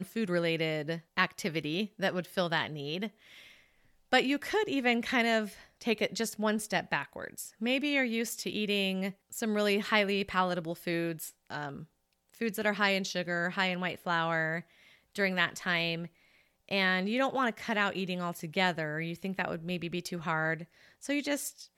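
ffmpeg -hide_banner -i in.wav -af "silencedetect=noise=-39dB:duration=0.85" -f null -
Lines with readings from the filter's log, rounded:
silence_start: 3.08
silence_end: 4.12 | silence_duration: 1.04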